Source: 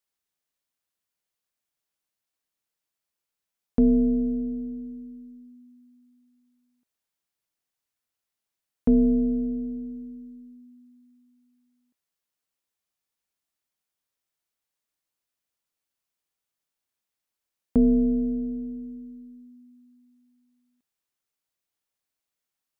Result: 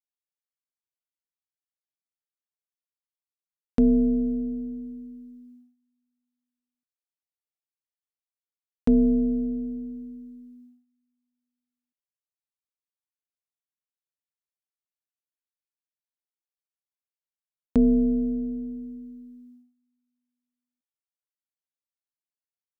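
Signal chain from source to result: gate -51 dBFS, range -20 dB

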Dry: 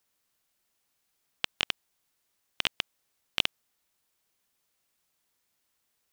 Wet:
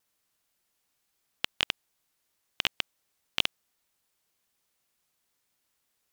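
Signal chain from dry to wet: vibrato 2.1 Hz 27 cents

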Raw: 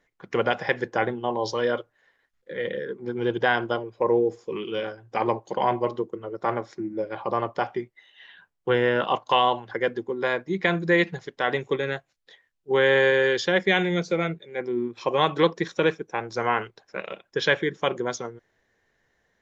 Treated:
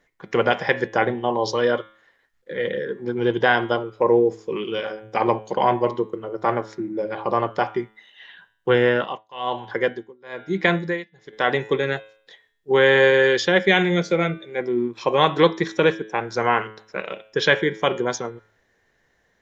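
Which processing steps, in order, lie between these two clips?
de-hum 108.2 Hz, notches 37; 8.83–11.33 s: tremolo 1.1 Hz, depth 97%; trim +4.5 dB

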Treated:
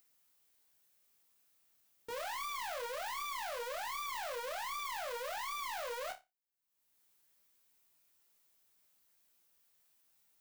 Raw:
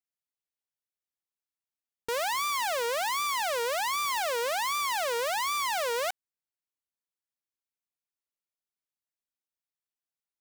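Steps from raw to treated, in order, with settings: treble shelf 12 kHz +11 dB; upward compressor, threshold -47 dBFS; chorus 1.3 Hz, delay 17 ms, depth 2.4 ms; saturation -35 dBFS, distortion -7 dB; on a send: flutter echo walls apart 5 m, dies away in 0.22 s; on the sum: trim -3.5 dB

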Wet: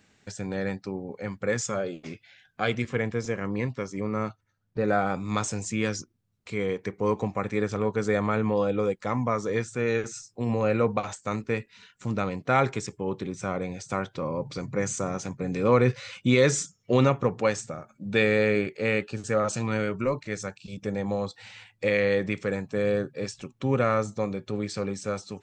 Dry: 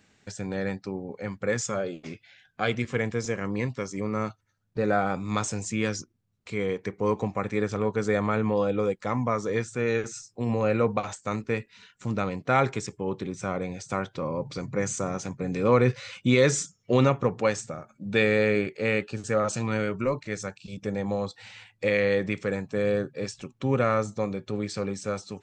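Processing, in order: 2.89–4.88 s: treble shelf 5.4 kHz -8.5 dB

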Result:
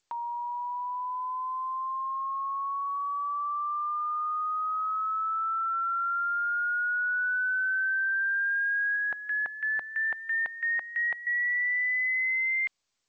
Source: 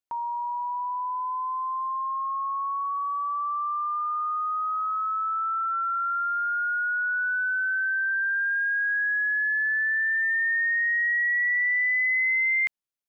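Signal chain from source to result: dynamic bell 630 Hz, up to -5 dB, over -42 dBFS, Q 0.71; peak limiter -24.5 dBFS, peak gain reduction 3.5 dB; 8.96–11.27 s: LFO band-pass square 3 Hz 790–1900 Hz; G.722 64 kbps 16 kHz

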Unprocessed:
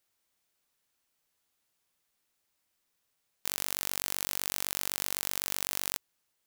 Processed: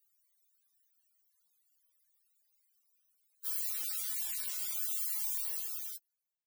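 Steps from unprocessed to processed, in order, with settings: fade out at the end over 1.17 s; 3.67–4.75 s: crackle 140 per s -46 dBFS; loudest bins only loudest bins 32; RIAA curve recording

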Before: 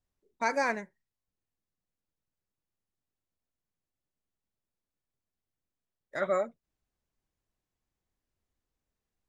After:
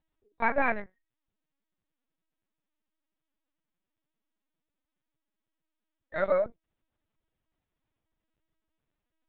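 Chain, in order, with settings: LPC vocoder at 8 kHz pitch kept; trim +3 dB

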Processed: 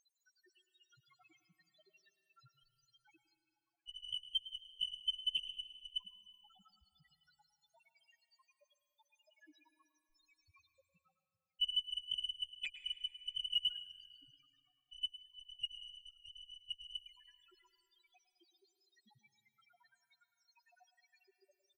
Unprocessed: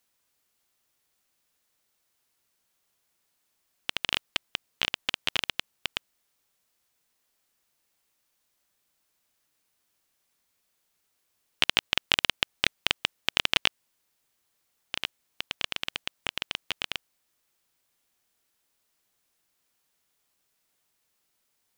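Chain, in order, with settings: peak limiter -4.5 dBFS, peak gain reduction 3 dB; reverse; upward compressor, threshold -29 dBFS; reverse; loudest bins only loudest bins 1; short-mantissa float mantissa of 8-bit; Chebyshev shaper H 6 -34 dB, 7 -12 dB, 8 -31 dB, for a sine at -37.5 dBFS; distance through air 230 m; on a send: delay 106 ms -15.5 dB; on the sum: plate-style reverb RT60 2.4 s, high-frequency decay 0.75×, pre-delay 105 ms, DRR 12.5 dB; trim +16 dB

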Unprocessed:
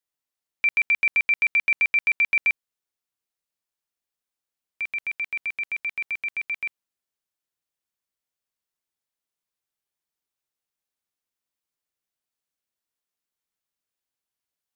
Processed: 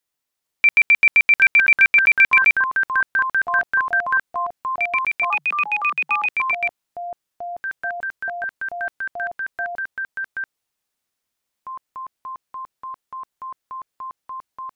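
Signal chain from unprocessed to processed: ever faster or slower copies 438 ms, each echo -7 st, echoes 3, each echo -6 dB; 5.30–6.29 s: frequency shift +140 Hz; trim +7 dB

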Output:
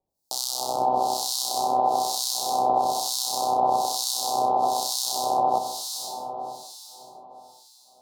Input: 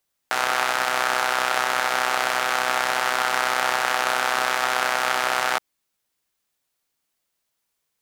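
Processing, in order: elliptic band-stop 850–4300 Hz, stop band 60 dB; echo that smears into a reverb 509 ms, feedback 47%, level -4.5 dB; 1.53–2.72 s: crackle 180 per s -44 dBFS; harmonic tremolo 1.1 Hz, depth 100%, crossover 1.8 kHz; trim +6.5 dB

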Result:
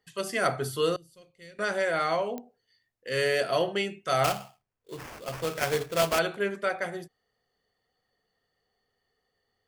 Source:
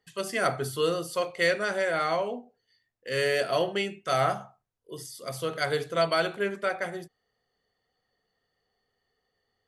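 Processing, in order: 0.96–1.59 s: amplifier tone stack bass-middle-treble 10-0-1; 4.24–6.19 s: sample-rate reducer 3.9 kHz, jitter 20%; clicks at 2.38 s, -23 dBFS

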